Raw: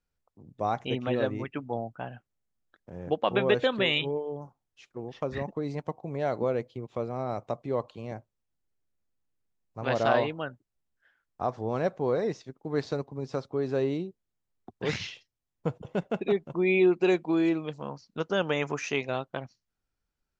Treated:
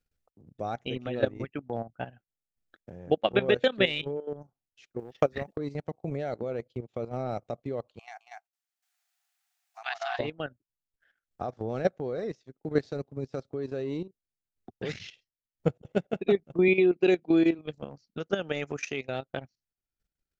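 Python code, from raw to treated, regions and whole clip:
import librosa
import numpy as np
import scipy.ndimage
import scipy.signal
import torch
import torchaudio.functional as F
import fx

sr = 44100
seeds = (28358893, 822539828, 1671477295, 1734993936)

y = fx.chain(x, sr, fx.low_shelf(hz=380.0, db=-5.0),
    fx.transient(attack_db=11, sustain_db=1),
    fx.quant_dither(seeds[0], bits=12, dither='none'), at=(4.99, 5.58))
y = fx.chain(y, sr, fx.brickwall_highpass(low_hz=670.0),
    fx.echo_single(ms=215, db=-5.0),
    fx.band_squash(depth_pct=40), at=(7.99, 10.19))
y = fx.chain(y, sr, fx.bandpass_edges(low_hz=140.0, high_hz=5400.0),
    fx.peak_eq(hz=1200.0, db=-4.0, octaves=0.85), at=(16.68, 17.59))
y = fx.peak_eq(y, sr, hz=1000.0, db=-12.0, octaves=0.4)
y = fx.transient(y, sr, attack_db=3, sustain_db=-11)
y = fx.level_steps(y, sr, step_db=12)
y = y * librosa.db_to_amplitude(4.0)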